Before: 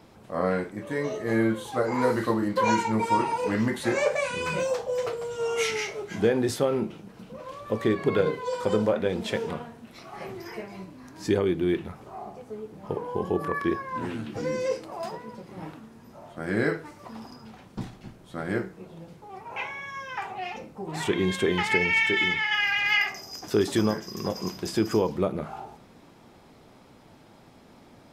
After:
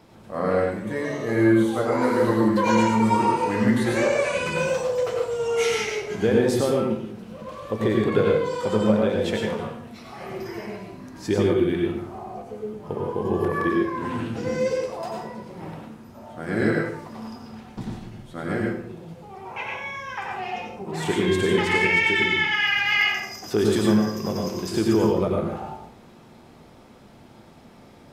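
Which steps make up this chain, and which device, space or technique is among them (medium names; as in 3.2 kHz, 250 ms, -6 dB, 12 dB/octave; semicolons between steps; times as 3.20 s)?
bathroom (reverberation RT60 0.60 s, pre-delay 84 ms, DRR -0.5 dB)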